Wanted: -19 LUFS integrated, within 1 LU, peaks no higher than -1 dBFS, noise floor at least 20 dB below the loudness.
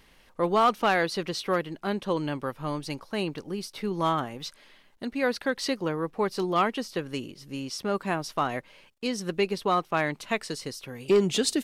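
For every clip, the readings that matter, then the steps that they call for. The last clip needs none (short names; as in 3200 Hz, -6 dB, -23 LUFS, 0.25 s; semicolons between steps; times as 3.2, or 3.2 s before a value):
clipped 0.3%; flat tops at -15.0 dBFS; loudness -28.5 LUFS; peak -15.0 dBFS; loudness target -19.0 LUFS
-> clip repair -15 dBFS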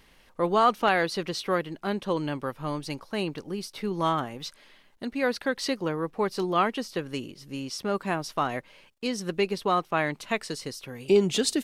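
clipped 0.0%; loudness -28.5 LUFS; peak -9.0 dBFS; loudness target -19.0 LUFS
-> gain +9.5 dB; limiter -1 dBFS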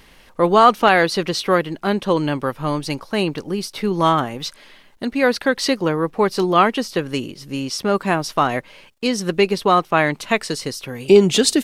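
loudness -19.0 LUFS; peak -1.0 dBFS; noise floor -49 dBFS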